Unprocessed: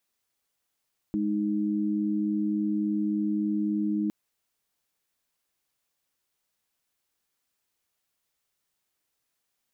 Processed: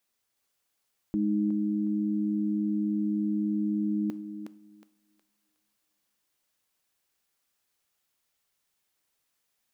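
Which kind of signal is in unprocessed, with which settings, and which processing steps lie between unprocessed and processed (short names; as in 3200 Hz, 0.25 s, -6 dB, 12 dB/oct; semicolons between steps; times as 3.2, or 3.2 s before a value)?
chord G#3/D#4 sine, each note -27 dBFS 2.96 s
on a send: thinning echo 0.365 s, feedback 35%, high-pass 530 Hz, level -3.5 dB; on the sum: two-slope reverb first 0.48 s, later 2.7 s, DRR 15 dB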